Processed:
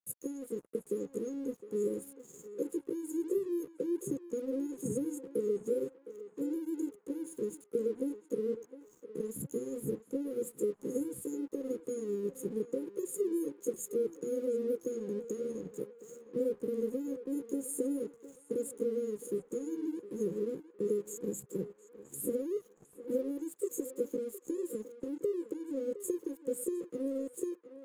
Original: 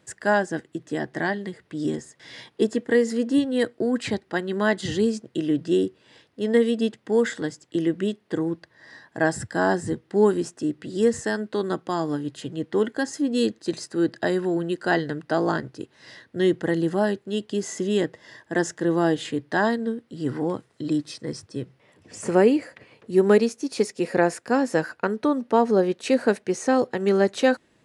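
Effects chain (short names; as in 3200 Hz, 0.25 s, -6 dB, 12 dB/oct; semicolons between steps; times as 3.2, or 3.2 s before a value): delay-line pitch shifter +5.5 st; compressor 10:1, threshold -28 dBFS, peak gain reduction 15.5 dB; brick-wall FIR band-stop 540–6400 Hz; crossover distortion -58 dBFS; narrowing echo 0.711 s, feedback 58%, band-pass 1300 Hz, level -8 dB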